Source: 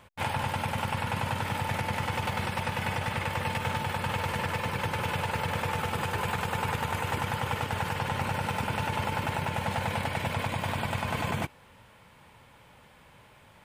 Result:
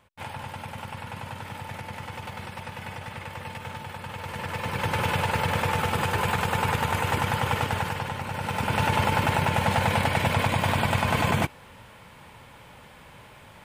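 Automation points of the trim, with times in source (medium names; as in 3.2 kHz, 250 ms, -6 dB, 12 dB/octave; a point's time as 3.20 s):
4.14 s -6.5 dB
4.96 s +5 dB
7.66 s +5 dB
8.24 s -3 dB
8.83 s +7 dB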